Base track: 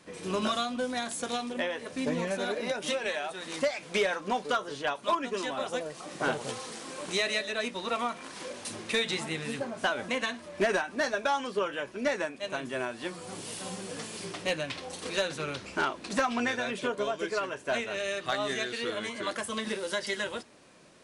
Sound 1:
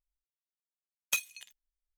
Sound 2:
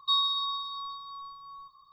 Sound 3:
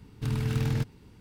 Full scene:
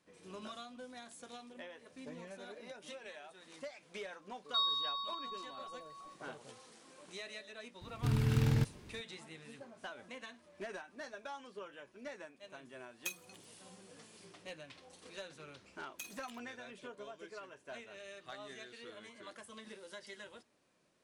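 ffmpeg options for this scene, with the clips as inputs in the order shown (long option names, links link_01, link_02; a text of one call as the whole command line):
ffmpeg -i bed.wav -i cue0.wav -i cue1.wav -i cue2.wav -filter_complex "[1:a]asplit=2[link_01][link_02];[0:a]volume=-18dB[link_03];[link_02]acompressor=threshold=-35dB:ratio=6:attack=3.2:release=140:knee=1:detection=peak[link_04];[2:a]atrim=end=1.92,asetpts=PTS-STARTPTS,volume=-7dB,afade=type=in:duration=0.004:curve=hsin,afade=type=out:start_time=1.916:duration=0.004:curve=hsin,adelay=4460[link_05];[3:a]atrim=end=1.2,asetpts=PTS-STARTPTS,volume=-2.5dB,afade=type=in:duration=0.004:curve=hsin,afade=type=out:start_time=1.196:duration=0.004:curve=hsin,adelay=7810[link_06];[link_01]atrim=end=1.97,asetpts=PTS-STARTPTS,volume=-11dB,afade=type=in:duration=0.004:curve=hsin,afade=type=out:start_time=1.966:duration=0.004:curve=hsin,adelay=11930[link_07];[link_04]atrim=end=1.97,asetpts=PTS-STARTPTS,volume=-6.5dB,afade=type=in:duration=0.004:curve=hsin,afade=type=out:start_time=1.966:duration=0.004:curve=hsin,adelay=14870[link_08];[link_03][link_05][link_06][link_07][link_08]amix=inputs=5:normalize=0" out.wav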